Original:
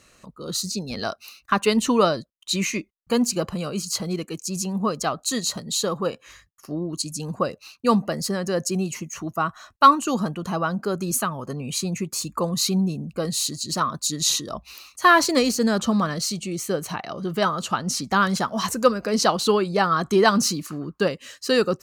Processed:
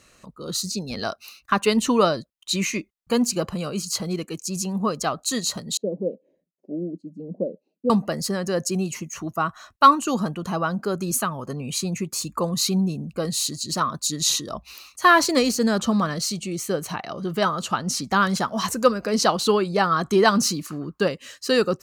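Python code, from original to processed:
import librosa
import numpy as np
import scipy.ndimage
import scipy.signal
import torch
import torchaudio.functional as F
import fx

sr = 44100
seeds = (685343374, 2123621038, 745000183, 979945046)

y = fx.ellip_bandpass(x, sr, low_hz=180.0, high_hz=590.0, order=3, stop_db=40, at=(5.77, 7.9))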